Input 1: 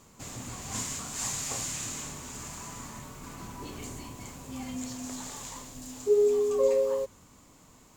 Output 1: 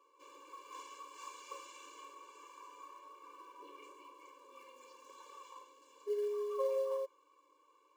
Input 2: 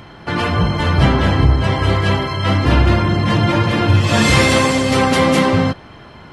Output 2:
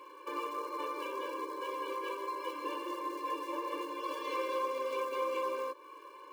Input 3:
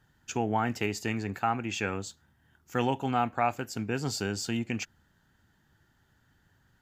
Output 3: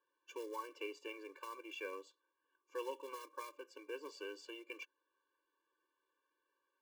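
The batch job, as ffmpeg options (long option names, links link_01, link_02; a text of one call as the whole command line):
ffmpeg -i in.wav -filter_complex "[0:a]asplit=3[link_01][link_02][link_03];[link_01]bandpass=frequency=730:width_type=q:width=8,volume=0dB[link_04];[link_02]bandpass=frequency=1090:width_type=q:width=8,volume=-6dB[link_05];[link_03]bandpass=frequency=2440:width_type=q:width=8,volume=-9dB[link_06];[link_04][link_05][link_06]amix=inputs=3:normalize=0,acrossover=split=260|690[link_07][link_08][link_09];[link_07]acompressor=threshold=-51dB:ratio=4[link_10];[link_08]acompressor=threshold=-42dB:ratio=4[link_11];[link_09]acompressor=threshold=-42dB:ratio=4[link_12];[link_10][link_11][link_12]amix=inputs=3:normalize=0,asplit=2[link_13][link_14];[link_14]acrusher=bits=3:mode=log:mix=0:aa=0.000001,volume=-4dB[link_15];[link_13][link_15]amix=inputs=2:normalize=0,afftfilt=real='re*eq(mod(floor(b*sr/1024/300),2),1)':imag='im*eq(mod(floor(b*sr/1024/300),2),1)':win_size=1024:overlap=0.75,volume=1.5dB" out.wav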